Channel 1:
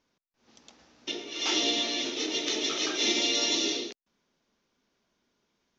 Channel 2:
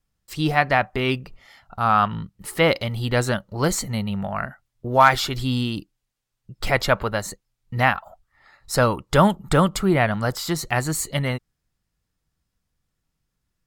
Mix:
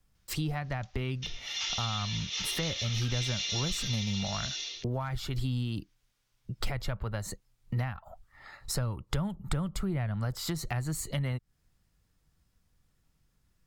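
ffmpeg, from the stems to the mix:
-filter_complex "[0:a]highpass=1.5k,adelay=150,volume=0.5dB,asplit=2[a][b];[b]volume=-3.5dB[c];[1:a]acrossover=split=140[d][e];[e]acompressor=threshold=-31dB:ratio=8[f];[d][f]amix=inputs=2:normalize=0,acontrast=76,volume=-3.5dB[g];[c]aecho=0:1:766:1[h];[a][g][h]amix=inputs=3:normalize=0,lowshelf=f=160:g=3.5,acompressor=threshold=-35dB:ratio=2"

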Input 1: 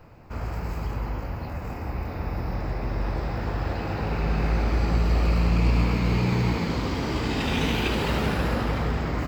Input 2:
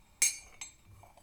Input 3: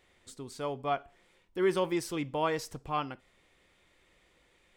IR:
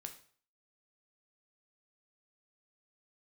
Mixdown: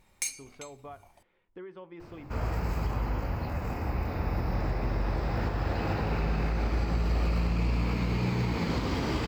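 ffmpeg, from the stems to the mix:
-filter_complex "[0:a]adelay=2000,volume=0dB[a];[1:a]bandreject=f=7.8k:w=23,volume=-1.5dB[b];[2:a]lowpass=2.2k,bandreject=f=50:t=h:w=6,bandreject=f=100:t=h:w=6,bandreject=f=150:t=h:w=6,bandreject=f=200:t=h:w=6,bandreject=f=250:t=h:w=6,bandreject=f=300:t=h:w=6,bandreject=f=350:t=h:w=6,acompressor=threshold=-38dB:ratio=8,volume=-4dB[c];[a][b][c]amix=inputs=3:normalize=0,alimiter=limit=-19.5dB:level=0:latency=1:release=291"

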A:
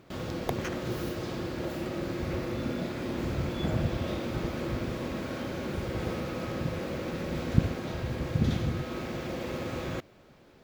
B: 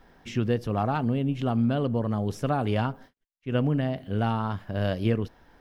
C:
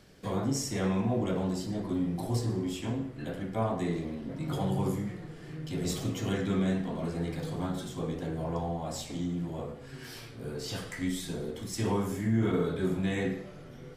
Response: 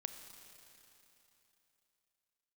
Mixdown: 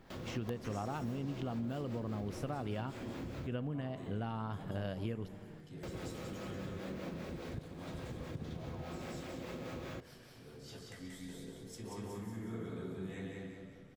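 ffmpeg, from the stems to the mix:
-filter_complex "[0:a]volume=-4dB,asplit=3[a][b][c];[a]atrim=end=3.47,asetpts=PTS-STARTPTS,afade=t=out:st=3.466:d=0.004:c=hsin[d];[b]atrim=start=3.47:end=5.83,asetpts=PTS-STARTPTS,volume=0[e];[c]atrim=start=5.83,asetpts=PTS-STARTPTS,afade=t=in:d=0.004:c=hsin[f];[d][e][f]concat=n=3:v=0:a=1[g];[1:a]volume=-9.5dB,asplit=3[h][i][j];[i]volume=-7dB[k];[2:a]volume=-14dB,asplit=2[l][m];[m]volume=-3.5dB[n];[j]apad=whole_len=615645[o];[l][o]sidechaincompress=threshold=-38dB:ratio=8:attack=16:release=325[p];[g][p]amix=inputs=2:normalize=0,acrossover=split=410[q][r];[q]aeval=exprs='val(0)*(1-0.5/2+0.5/2*cos(2*PI*4.9*n/s))':c=same[s];[r]aeval=exprs='val(0)*(1-0.5/2-0.5/2*cos(2*PI*4.9*n/s))':c=same[t];[s][t]amix=inputs=2:normalize=0,acompressor=threshold=-41dB:ratio=6,volume=0dB[u];[3:a]atrim=start_sample=2205[v];[k][v]afir=irnorm=-1:irlink=0[w];[n]aecho=0:1:183|366|549|732|915|1098|1281:1|0.5|0.25|0.125|0.0625|0.0312|0.0156[x];[h][u][w][x]amix=inputs=4:normalize=0,acompressor=threshold=-35dB:ratio=6"

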